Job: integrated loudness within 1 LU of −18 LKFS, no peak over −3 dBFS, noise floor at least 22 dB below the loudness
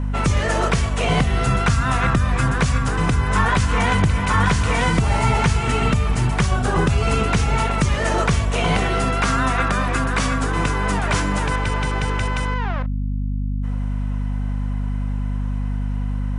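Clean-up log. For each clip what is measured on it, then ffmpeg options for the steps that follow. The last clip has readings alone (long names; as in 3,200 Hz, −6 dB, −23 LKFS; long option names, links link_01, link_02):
mains hum 50 Hz; hum harmonics up to 250 Hz; level of the hum −20 dBFS; integrated loudness −20.5 LKFS; sample peak −5.0 dBFS; target loudness −18.0 LKFS
→ -af "bandreject=frequency=50:width_type=h:width=6,bandreject=frequency=100:width_type=h:width=6,bandreject=frequency=150:width_type=h:width=6,bandreject=frequency=200:width_type=h:width=6,bandreject=frequency=250:width_type=h:width=6"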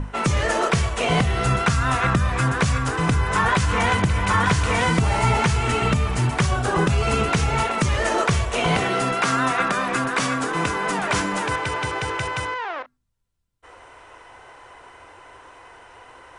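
mains hum none found; integrated loudness −21.0 LKFS; sample peak −6.5 dBFS; target loudness −18.0 LKFS
→ -af "volume=3dB"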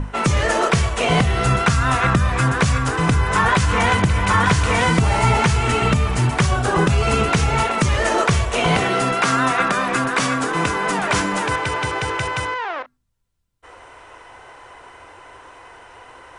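integrated loudness −18.0 LKFS; sample peak −3.5 dBFS; background noise floor −45 dBFS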